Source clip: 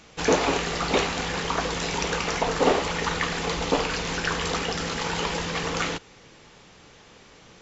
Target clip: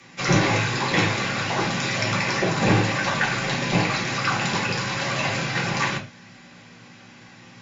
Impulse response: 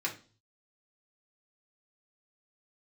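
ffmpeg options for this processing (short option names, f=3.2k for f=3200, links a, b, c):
-filter_complex "[0:a]aeval=exprs='val(0)+0.002*(sin(2*PI*60*n/s)+sin(2*PI*2*60*n/s)/2+sin(2*PI*3*60*n/s)/3+sin(2*PI*4*60*n/s)/4+sin(2*PI*5*60*n/s)/5)':c=same,afreqshift=-300[a];[1:a]atrim=start_sample=2205,afade=t=out:st=0.18:d=0.01,atrim=end_sample=8379[b];[a][b]afir=irnorm=-1:irlink=0"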